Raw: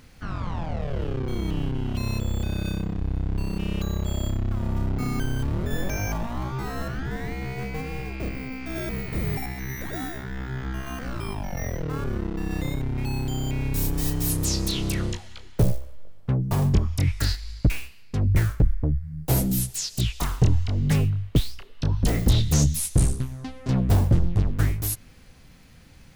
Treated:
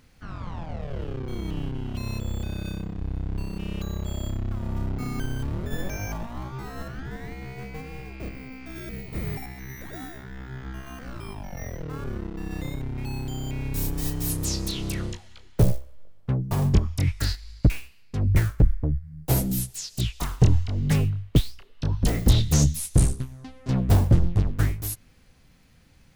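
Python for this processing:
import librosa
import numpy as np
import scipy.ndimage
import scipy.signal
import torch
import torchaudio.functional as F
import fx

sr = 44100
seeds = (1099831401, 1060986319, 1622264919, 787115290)

y = fx.peak_eq(x, sr, hz=fx.line((8.7, 520.0), (9.13, 1700.0)), db=-12.0, octaves=0.53, at=(8.7, 9.13), fade=0.02)
y = fx.upward_expand(y, sr, threshold_db=-31.0, expansion=1.5)
y = F.gain(torch.from_numpy(y), 2.5).numpy()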